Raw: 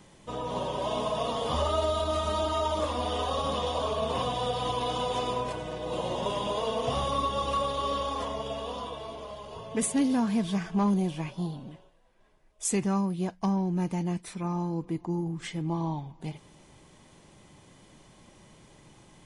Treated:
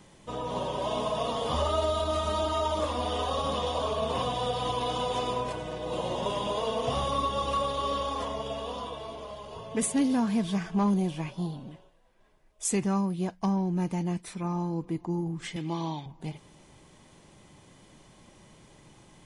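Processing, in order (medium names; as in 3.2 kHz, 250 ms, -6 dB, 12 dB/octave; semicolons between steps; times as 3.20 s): 15.56–16.06 s: frequency weighting D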